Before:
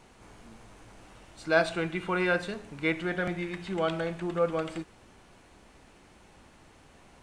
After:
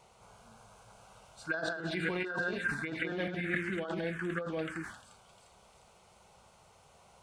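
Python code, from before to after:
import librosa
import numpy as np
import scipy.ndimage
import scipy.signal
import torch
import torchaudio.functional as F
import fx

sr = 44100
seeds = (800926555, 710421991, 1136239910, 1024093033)

y = fx.reverse_delay(x, sr, ms=146, wet_db=-2.0, at=(1.51, 4.04))
y = fx.low_shelf(y, sr, hz=330.0, db=3.5)
y = fx.echo_wet_highpass(y, sr, ms=352, feedback_pct=53, hz=4700.0, wet_db=-4)
y = fx.env_phaser(y, sr, low_hz=270.0, high_hz=2300.0, full_db=-21.0)
y = fx.over_compress(y, sr, threshold_db=-30.0, ratio=-0.5)
y = fx.highpass(y, sr, hz=170.0, slope=6)
y = fx.peak_eq(y, sr, hz=1600.0, db=14.0, octaves=0.54)
y = fx.sustainer(y, sr, db_per_s=92.0)
y = y * librosa.db_to_amplitude(-5.0)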